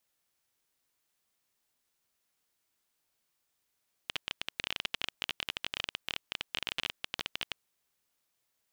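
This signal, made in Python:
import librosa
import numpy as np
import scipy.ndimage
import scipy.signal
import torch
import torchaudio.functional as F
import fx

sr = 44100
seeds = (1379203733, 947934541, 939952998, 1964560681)

y = fx.geiger_clicks(sr, seeds[0], length_s=3.62, per_s=20.0, level_db=-15.0)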